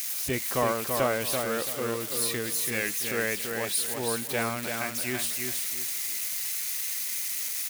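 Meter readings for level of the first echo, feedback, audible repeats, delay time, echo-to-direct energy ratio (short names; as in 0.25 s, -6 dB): -5.0 dB, 29%, 3, 0.334 s, -4.5 dB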